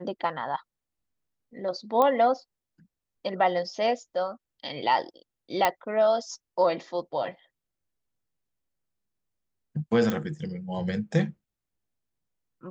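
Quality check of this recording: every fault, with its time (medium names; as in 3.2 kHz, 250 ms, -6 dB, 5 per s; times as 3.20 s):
2.02 s: pop -12 dBFS
5.65 s: pop -7 dBFS
10.10 s: pop -15 dBFS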